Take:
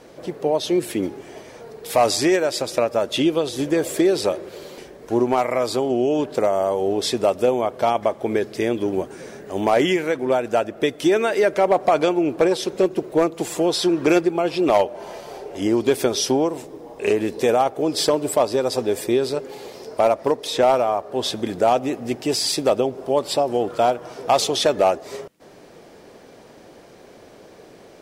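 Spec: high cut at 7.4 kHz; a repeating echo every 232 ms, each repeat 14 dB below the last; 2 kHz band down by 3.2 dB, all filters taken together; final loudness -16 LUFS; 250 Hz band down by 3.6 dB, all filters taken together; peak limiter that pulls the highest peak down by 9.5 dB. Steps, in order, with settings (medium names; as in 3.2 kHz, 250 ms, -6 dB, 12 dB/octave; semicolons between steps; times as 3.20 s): low-pass 7.4 kHz; peaking EQ 250 Hz -5.5 dB; peaking EQ 2 kHz -4 dB; peak limiter -17.5 dBFS; feedback delay 232 ms, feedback 20%, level -14 dB; trim +11.5 dB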